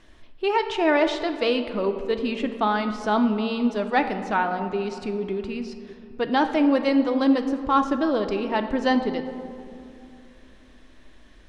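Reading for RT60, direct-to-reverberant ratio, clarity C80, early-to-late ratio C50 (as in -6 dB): 2.6 s, 7.0 dB, 10.0 dB, 9.0 dB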